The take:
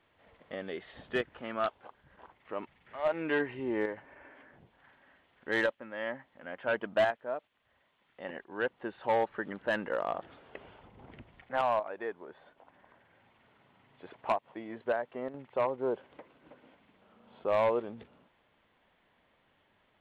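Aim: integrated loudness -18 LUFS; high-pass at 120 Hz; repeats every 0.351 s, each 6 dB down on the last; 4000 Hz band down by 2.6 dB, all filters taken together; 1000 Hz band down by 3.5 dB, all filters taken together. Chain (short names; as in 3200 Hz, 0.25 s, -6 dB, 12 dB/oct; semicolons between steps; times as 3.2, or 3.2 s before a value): HPF 120 Hz; bell 1000 Hz -4.5 dB; bell 4000 Hz -3.5 dB; feedback echo 0.351 s, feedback 50%, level -6 dB; gain +17.5 dB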